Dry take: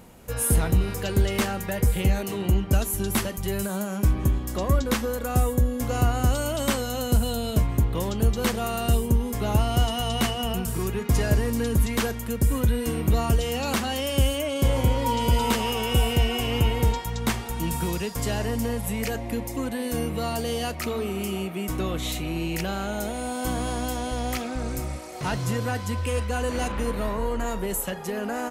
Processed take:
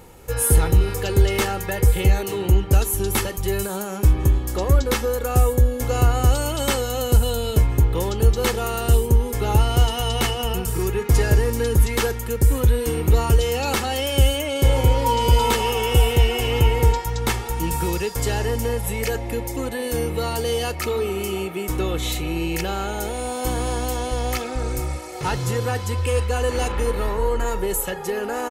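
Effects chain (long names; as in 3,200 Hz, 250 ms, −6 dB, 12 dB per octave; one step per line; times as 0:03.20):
comb filter 2.3 ms, depth 55%
level +3 dB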